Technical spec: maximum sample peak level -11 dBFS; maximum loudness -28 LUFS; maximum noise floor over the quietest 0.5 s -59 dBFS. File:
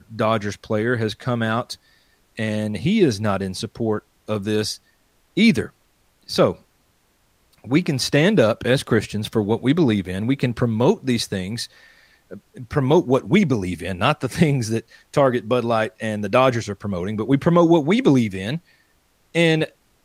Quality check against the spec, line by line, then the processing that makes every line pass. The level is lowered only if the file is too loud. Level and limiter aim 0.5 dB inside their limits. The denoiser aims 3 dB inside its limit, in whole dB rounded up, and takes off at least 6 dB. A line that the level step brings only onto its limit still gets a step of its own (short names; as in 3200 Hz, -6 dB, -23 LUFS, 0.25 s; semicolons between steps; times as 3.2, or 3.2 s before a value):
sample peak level -4.0 dBFS: fail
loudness -20.5 LUFS: fail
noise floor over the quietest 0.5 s -62 dBFS: OK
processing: gain -8 dB